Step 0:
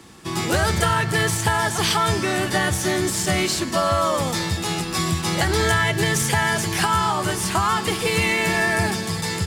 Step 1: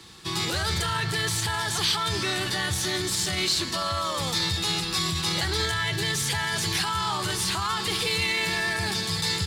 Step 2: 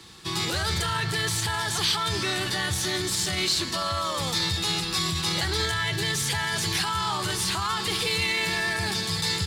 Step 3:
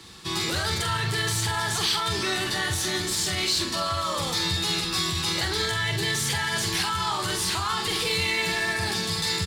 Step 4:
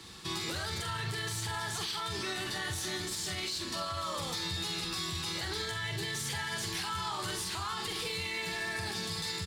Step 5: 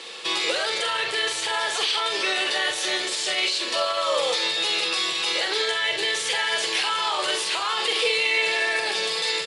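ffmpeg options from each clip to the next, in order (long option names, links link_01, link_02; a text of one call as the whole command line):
ffmpeg -i in.wav -af "alimiter=limit=-16dB:level=0:latency=1:release=22,equalizer=frequency=250:width_type=o:width=0.67:gain=-8,equalizer=frequency=630:width_type=o:width=0.67:gain=-6,equalizer=frequency=4000:width_type=o:width=0.67:gain=10,volume=-2.5dB" out.wav
ffmpeg -i in.wav -af anull out.wav
ffmpeg -i in.wav -filter_complex "[0:a]asplit=2[link_01][link_02];[link_02]asoftclip=type=tanh:threshold=-27.5dB,volume=-6.5dB[link_03];[link_01][link_03]amix=inputs=2:normalize=0,asplit=2[link_04][link_05];[link_05]adelay=45,volume=-6dB[link_06];[link_04][link_06]amix=inputs=2:normalize=0,volume=-2.5dB" out.wav
ffmpeg -i in.wav -af "alimiter=limit=-24dB:level=0:latency=1:release=242,volume=-3dB" out.wav
ffmpeg -i in.wav -af "highpass=frequency=510:width_type=q:width=5,equalizer=frequency=2700:width=1.3:gain=10.5,volume=7dB" -ar 24000 -c:a libmp3lame -b:a 160k out.mp3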